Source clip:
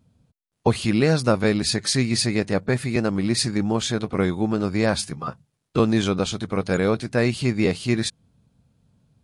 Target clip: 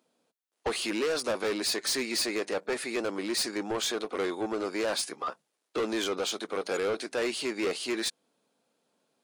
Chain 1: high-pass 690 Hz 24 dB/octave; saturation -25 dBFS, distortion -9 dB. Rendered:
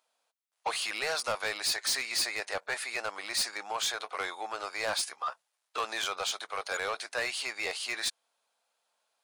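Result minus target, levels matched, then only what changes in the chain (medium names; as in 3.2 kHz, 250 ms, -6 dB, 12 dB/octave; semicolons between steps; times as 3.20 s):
250 Hz band -17.5 dB
change: high-pass 340 Hz 24 dB/octave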